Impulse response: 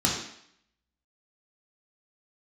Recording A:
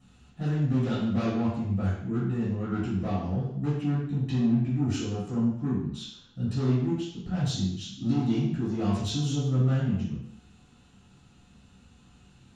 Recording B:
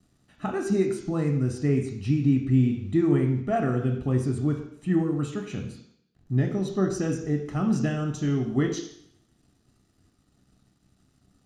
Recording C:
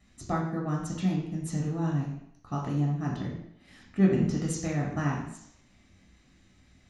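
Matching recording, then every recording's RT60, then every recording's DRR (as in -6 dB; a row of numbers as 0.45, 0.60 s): C; 0.65, 0.65, 0.65 s; -10.5, 3.0, -3.0 dB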